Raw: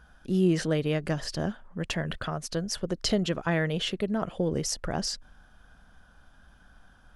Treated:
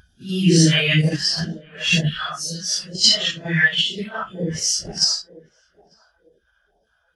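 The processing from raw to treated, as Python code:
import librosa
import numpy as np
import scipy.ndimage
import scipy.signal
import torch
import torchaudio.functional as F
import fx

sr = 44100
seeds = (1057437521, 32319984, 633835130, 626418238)

p1 = fx.phase_scramble(x, sr, seeds[0], window_ms=200)
p2 = fx.level_steps(p1, sr, step_db=15)
p3 = p1 + F.gain(torch.from_numpy(p2), 2.0).numpy()
p4 = scipy.signal.sosfilt(scipy.signal.butter(2, 50.0, 'highpass', fs=sr, output='sos'), p3)
p5 = fx.tilt_shelf(p4, sr, db=-6.5, hz=710.0)
p6 = p5 + fx.echo_banded(p5, sr, ms=896, feedback_pct=53, hz=650.0, wet_db=-10.0, dry=0)
p7 = fx.phaser_stages(p6, sr, stages=2, low_hz=250.0, high_hz=1300.0, hz=2.1, feedback_pct=35)
p8 = fx.rider(p7, sr, range_db=10, speed_s=2.0)
p9 = fx.spectral_expand(p8, sr, expansion=1.5)
y = F.gain(torch.from_numpy(p9), 5.0).numpy()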